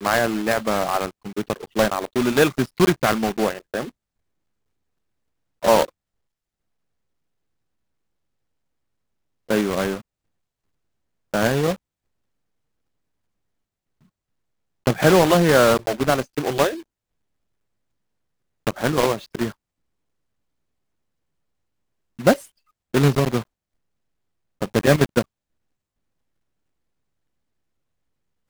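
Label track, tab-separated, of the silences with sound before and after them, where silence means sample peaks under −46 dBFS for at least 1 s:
3.900000	5.620000	silence
5.890000	9.490000	silence
10.010000	11.340000	silence
11.760000	14.860000	silence
16.830000	18.670000	silence
19.520000	22.190000	silence
23.440000	24.610000	silence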